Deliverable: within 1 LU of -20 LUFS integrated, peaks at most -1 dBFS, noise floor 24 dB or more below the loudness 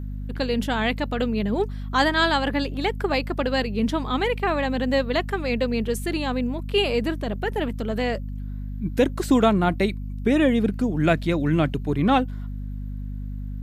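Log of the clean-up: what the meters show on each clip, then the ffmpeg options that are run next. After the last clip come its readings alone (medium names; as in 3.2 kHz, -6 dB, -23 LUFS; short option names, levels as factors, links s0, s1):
hum 50 Hz; highest harmonic 250 Hz; hum level -28 dBFS; loudness -23.5 LUFS; peak level -6.0 dBFS; loudness target -20.0 LUFS
-> -af "bandreject=f=50:t=h:w=4,bandreject=f=100:t=h:w=4,bandreject=f=150:t=h:w=4,bandreject=f=200:t=h:w=4,bandreject=f=250:t=h:w=4"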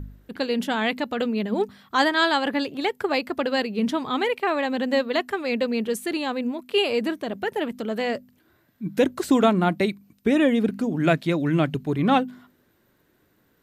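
hum not found; loudness -24.0 LUFS; peak level -6.5 dBFS; loudness target -20.0 LUFS
-> -af "volume=1.58"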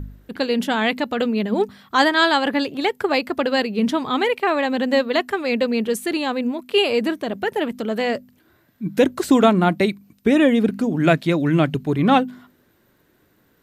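loudness -20.0 LUFS; peak level -2.5 dBFS; noise floor -61 dBFS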